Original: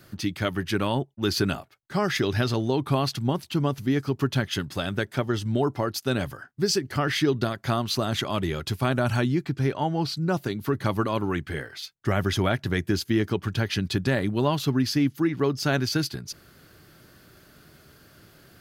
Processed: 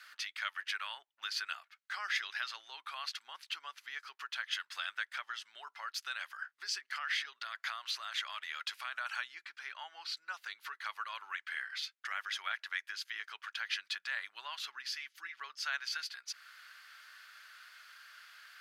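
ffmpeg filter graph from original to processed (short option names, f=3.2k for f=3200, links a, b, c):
-filter_complex "[0:a]asettb=1/sr,asplit=3[a][b][c];[a]atrim=end=6.934[d];[b]atrim=start=6.93:end=8.94,asetpts=PTS-STARTPTS,afade=t=in:d=0.004:c=qsin,afade=t=out:st=2.006:d=0.004:c=qsin,highpass=200,acompressor=threshold=-28dB:ratio=2:attack=3.2:release=140:knee=1:detection=peak[e];[c]atrim=start=8.936[f];[d][e]acrossfade=d=0.004:c1=hsin:c2=qsin[g];[g][f]acrossfade=d=0.004:c1=qsin:c2=hsin,asettb=1/sr,asplit=3[h][i][j];[h]atrim=end=14.884[k];[i]atrim=start=14.88:end=15.39,asetpts=PTS-STARTPTS,afade=t=in:d=0.004:c=qsin,afade=t=out:st=0.506:d=0.004:c=qsin,equalizer=f=770:t=o:w=1.7:g=-8,aecho=1:1:5.3:0.38,atrim=end_sample=22491[l];[j]atrim=start=15.386[m];[k][l]acrossfade=d=0.004:c1=hsin:c2=qsin[n];[n][m]acrossfade=d=0.004:c1=qsin:c2=hsin,acompressor=threshold=-39dB:ratio=2,highpass=f=1.4k:w=0.5412,highpass=f=1.4k:w=1.3066,aemphasis=mode=reproduction:type=75fm,volume=7dB"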